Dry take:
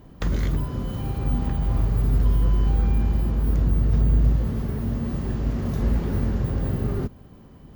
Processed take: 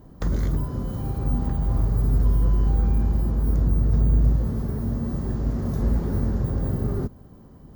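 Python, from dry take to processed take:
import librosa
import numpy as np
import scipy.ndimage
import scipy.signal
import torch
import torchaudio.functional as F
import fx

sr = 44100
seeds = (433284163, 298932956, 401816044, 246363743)

y = fx.peak_eq(x, sr, hz=2700.0, db=-11.0, octaves=1.1)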